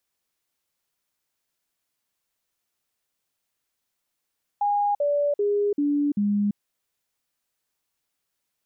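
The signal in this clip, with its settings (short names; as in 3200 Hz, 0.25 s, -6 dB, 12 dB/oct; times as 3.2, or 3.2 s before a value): stepped sine 819 Hz down, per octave 2, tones 5, 0.34 s, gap 0.05 s -19.5 dBFS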